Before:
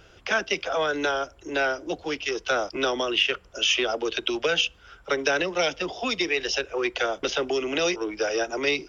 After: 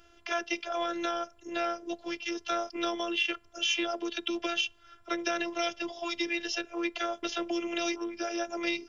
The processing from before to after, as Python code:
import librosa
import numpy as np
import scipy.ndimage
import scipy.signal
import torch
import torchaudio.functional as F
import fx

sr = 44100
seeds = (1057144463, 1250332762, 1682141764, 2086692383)

y = fx.robotise(x, sr, hz=343.0)
y = F.gain(torch.from_numpy(y), -4.5).numpy()